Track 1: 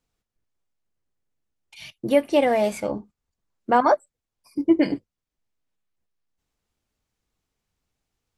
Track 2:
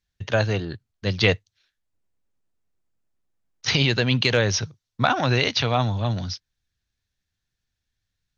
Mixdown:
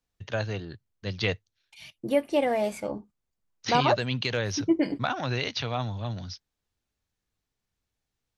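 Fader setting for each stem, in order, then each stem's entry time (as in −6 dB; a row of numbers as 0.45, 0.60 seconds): −5.5, −8.5 decibels; 0.00, 0.00 seconds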